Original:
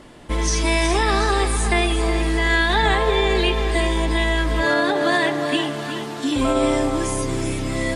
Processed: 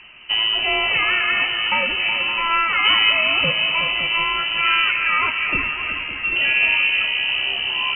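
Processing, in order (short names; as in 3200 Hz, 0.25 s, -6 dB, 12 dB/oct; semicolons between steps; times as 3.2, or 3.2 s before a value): on a send: echo with dull and thin repeats by turns 0.281 s, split 1100 Hz, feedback 54%, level -7 dB; on the sum: inverted band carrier 3000 Hz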